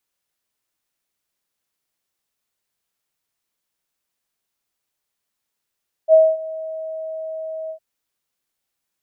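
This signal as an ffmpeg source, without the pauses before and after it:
-f lavfi -i "aevalsrc='0.501*sin(2*PI*638*t)':d=1.708:s=44100,afade=t=in:d=0.052,afade=t=out:st=0.052:d=0.237:silence=0.1,afade=t=out:st=1.62:d=0.088"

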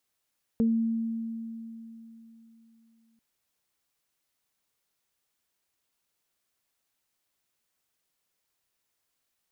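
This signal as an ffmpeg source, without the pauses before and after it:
-f lavfi -i "aevalsrc='0.1*pow(10,-3*t/3.46)*sin(2*PI*227*t)+0.0422*pow(10,-3*t/0.22)*sin(2*PI*454*t)':d=2.59:s=44100"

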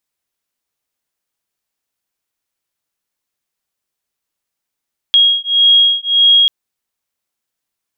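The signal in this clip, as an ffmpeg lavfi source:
-f lavfi -i "aevalsrc='0.282*(sin(2*PI*3280*t)+sin(2*PI*3281.7*t))':d=1.34:s=44100"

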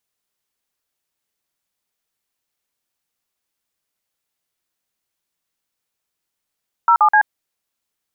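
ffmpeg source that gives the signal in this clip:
-f lavfi -i "aevalsrc='0.266*clip(min(mod(t,0.127),0.08-mod(t,0.127))/0.002,0,1)*(eq(floor(t/0.127),0)*(sin(2*PI*941*mod(t,0.127))+sin(2*PI*1336*mod(t,0.127)))+eq(floor(t/0.127),1)*(sin(2*PI*852*mod(t,0.127))+sin(2*PI*1209*mod(t,0.127)))+eq(floor(t/0.127),2)*(sin(2*PI*852*mod(t,0.127))+sin(2*PI*1633*mod(t,0.127))))':d=0.381:s=44100"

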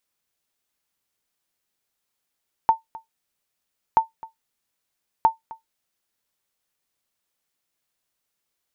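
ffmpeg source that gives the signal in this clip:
-f lavfi -i "aevalsrc='0.447*(sin(2*PI*898*mod(t,1.28))*exp(-6.91*mod(t,1.28)/0.14)+0.0891*sin(2*PI*898*max(mod(t,1.28)-0.26,0))*exp(-6.91*max(mod(t,1.28)-0.26,0)/0.14))':d=3.84:s=44100"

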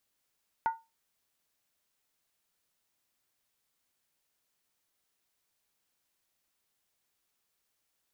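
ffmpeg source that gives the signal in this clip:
-f lavfi -i "aevalsrc='0.0794*pow(10,-3*t/0.24)*sin(2*PI*906*t)+0.0224*pow(10,-3*t/0.19)*sin(2*PI*1444.2*t)+0.00631*pow(10,-3*t/0.164)*sin(2*PI*1935.2*t)+0.00178*pow(10,-3*t/0.158)*sin(2*PI*2080.2*t)+0.000501*pow(10,-3*t/0.147)*sin(2*PI*2403.6*t)':d=0.63:s=44100"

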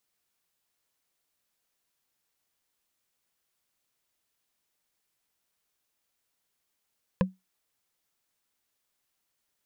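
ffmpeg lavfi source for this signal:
-f lavfi -i "aevalsrc='0.141*pow(10,-3*t/0.19)*sin(2*PI*187*t)+0.1*pow(10,-3*t/0.056)*sin(2*PI*515.6*t)+0.0708*pow(10,-3*t/0.025)*sin(2*PI*1010.5*t)+0.0501*pow(10,-3*t/0.014)*sin(2*PI*1670.5*t)+0.0355*pow(10,-3*t/0.008)*sin(2*PI*2494.6*t)':d=0.45:s=44100"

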